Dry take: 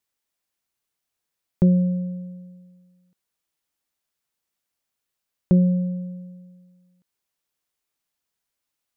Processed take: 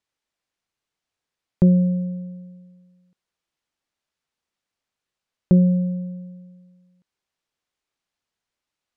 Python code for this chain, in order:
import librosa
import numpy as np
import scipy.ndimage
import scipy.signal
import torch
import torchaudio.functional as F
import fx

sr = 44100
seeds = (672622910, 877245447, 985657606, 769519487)

y = fx.air_absorb(x, sr, metres=74.0)
y = F.gain(torch.from_numpy(y), 2.0).numpy()